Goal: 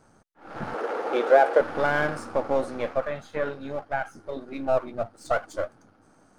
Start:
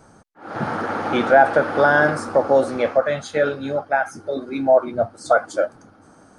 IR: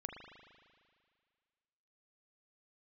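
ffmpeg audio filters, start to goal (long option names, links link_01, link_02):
-filter_complex "[0:a]aeval=exprs='if(lt(val(0),0),0.447*val(0),val(0))':channel_layout=same,asettb=1/sr,asplit=3[link_01][link_02][link_03];[link_01]atrim=end=0.744[link_04];[link_02]atrim=start=0.74:end=1.61,asetpts=PTS-STARTPTS,afade=type=in:duration=0.004:curve=qsin,afade=type=out:start_time=0.866:duration=0.004:curve=qsin,highpass=frequency=440:width_type=q:width=3.5[link_05];[link_03]atrim=start=1.606[link_06];[link_04][link_05]acrossfade=duration=0.004:curve1=hsin:curve2=qsin[link_07];[link_07][link_06]acrossfade=duration=0.004:curve1=qsin:curve2=hsin,asettb=1/sr,asplit=3[link_08][link_09][link_10];[link_08]atrim=end=2.934[link_11];[link_09]atrim=start=2.93:end=4.49,asetpts=PTS-STARTPTS,afade=type=in:duration=0.004:curve=qsin,afade=type=out:start_time=1.556:duration=0.004:curve=qsin,acrossover=split=2800[link_12][link_13];[link_13]acompressor=threshold=-46dB:ratio=4:attack=1:release=60[link_14];[link_12][link_14]amix=inputs=2:normalize=0[link_15];[link_10]atrim=start=4.486[link_16];[link_11][link_15]acrossfade=duration=0.004:curve1=hsin:curve2=qsin[link_17];[link_17][link_16]acrossfade=duration=0.004:curve1=qsin:curve2=hsin,volume=-6.5dB"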